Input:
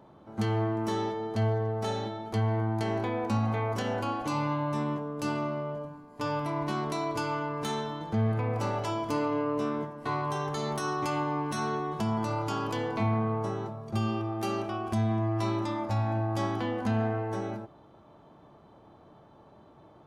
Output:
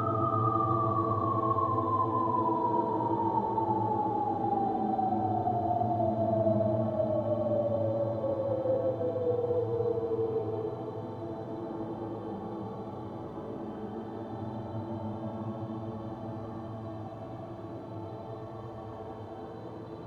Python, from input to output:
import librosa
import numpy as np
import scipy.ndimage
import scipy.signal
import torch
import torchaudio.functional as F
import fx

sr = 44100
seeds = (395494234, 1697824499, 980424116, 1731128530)

y = fx.echo_split(x, sr, split_hz=1000.0, low_ms=592, high_ms=113, feedback_pct=52, wet_db=-3.5)
y = fx.spec_paint(y, sr, seeds[0], shape='fall', start_s=18.22, length_s=0.82, low_hz=430.0, high_hz=1500.0, level_db=-38.0)
y = fx.paulstretch(y, sr, seeds[1], factor=15.0, window_s=0.1, from_s=18.33)
y = F.gain(torch.from_numpy(y), 7.0).numpy()